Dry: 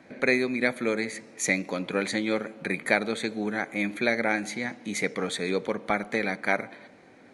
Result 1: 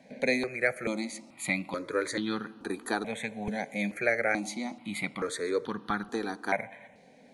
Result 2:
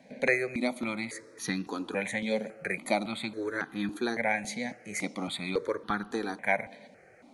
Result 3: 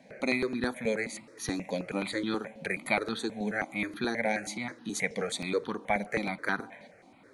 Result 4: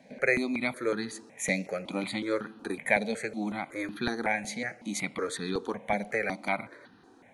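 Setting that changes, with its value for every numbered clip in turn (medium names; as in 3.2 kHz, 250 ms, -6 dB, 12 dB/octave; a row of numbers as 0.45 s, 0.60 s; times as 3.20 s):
stepped phaser, rate: 2.3 Hz, 3.6 Hz, 9.4 Hz, 5.4 Hz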